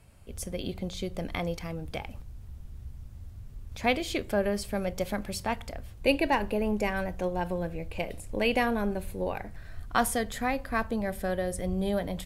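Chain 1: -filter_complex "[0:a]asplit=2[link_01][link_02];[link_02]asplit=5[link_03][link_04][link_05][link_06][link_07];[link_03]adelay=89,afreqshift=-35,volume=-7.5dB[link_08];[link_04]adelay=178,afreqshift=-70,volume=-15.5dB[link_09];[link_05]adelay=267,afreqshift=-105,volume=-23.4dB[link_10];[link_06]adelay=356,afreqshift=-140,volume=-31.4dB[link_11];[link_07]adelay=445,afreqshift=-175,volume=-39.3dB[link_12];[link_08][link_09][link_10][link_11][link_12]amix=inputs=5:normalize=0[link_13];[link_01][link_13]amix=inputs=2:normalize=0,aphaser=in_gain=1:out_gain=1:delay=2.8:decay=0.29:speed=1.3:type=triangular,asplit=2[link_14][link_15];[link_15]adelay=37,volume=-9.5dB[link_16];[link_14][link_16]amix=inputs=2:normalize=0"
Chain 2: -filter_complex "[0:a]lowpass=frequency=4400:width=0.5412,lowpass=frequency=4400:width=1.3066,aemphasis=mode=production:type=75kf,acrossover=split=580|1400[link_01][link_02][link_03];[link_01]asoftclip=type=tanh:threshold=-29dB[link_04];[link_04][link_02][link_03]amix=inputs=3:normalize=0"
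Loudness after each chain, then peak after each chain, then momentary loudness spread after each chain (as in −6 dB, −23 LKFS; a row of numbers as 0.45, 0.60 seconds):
−29.0, −31.0 LKFS; −9.0, −9.5 dBFS; 18, 19 LU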